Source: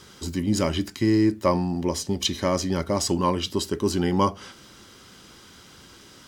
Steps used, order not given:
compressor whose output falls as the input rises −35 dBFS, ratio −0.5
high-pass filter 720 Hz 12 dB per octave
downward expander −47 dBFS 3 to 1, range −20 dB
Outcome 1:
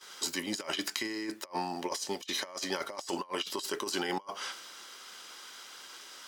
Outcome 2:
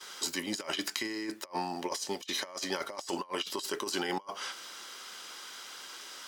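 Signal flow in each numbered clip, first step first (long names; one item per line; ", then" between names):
high-pass filter, then downward expander, then compressor whose output falls as the input rises
high-pass filter, then compressor whose output falls as the input rises, then downward expander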